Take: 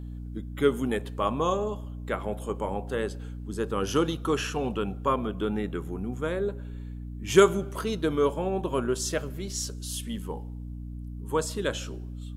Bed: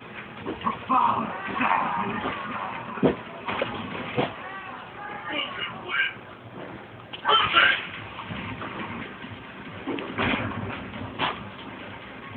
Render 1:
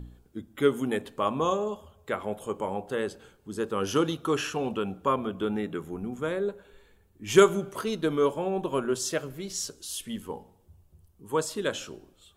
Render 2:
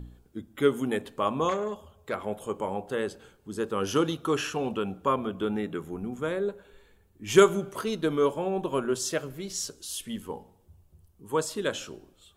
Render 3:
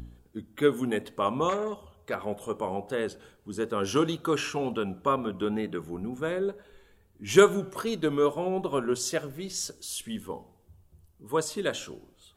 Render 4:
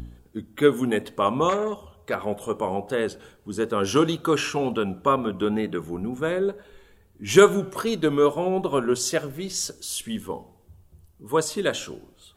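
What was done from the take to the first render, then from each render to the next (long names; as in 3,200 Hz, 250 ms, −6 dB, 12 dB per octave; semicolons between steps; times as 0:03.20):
hum removal 60 Hz, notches 5
0:01.49–0:02.26: saturating transformer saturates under 1,100 Hz
tape wow and flutter 49 cents
level +5 dB; brickwall limiter −3 dBFS, peak gain reduction 2.5 dB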